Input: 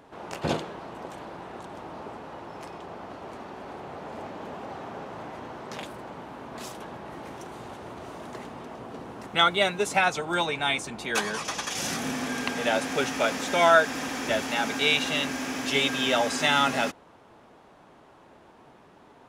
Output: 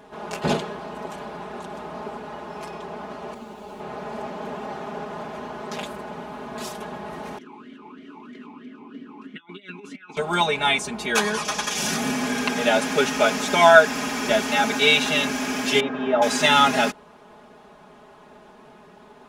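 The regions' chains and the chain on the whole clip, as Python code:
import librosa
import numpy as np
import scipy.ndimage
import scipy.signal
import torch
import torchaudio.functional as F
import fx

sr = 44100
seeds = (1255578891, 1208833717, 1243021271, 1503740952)

y = fx.chain(x, sr, fx.median_filter(points=25),
    fx.high_shelf(hz=4900.0, db=6.5),
    fx.ensemble(), at=(3.34, 3.8))
y = fx.chain(y, sr, fx.over_compress(threshold_db=-29.0, ratio=-0.5),
    fx.vowel_sweep(vowels='i-u', hz=3.1), at=(7.38, 10.17))
y = fx.chain(y, sr, fx.lowpass(hz=1100.0, slope=12),
    fx.low_shelf(hz=170.0, db=-7.5), at=(15.8, 16.22))
y = fx.notch(y, sr, hz=2000.0, q=27.0)
y = y + 0.97 * np.pad(y, (int(4.8 * sr / 1000.0), 0))[:len(y)]
y = y * 10.0 ** (2.5 / 20.0)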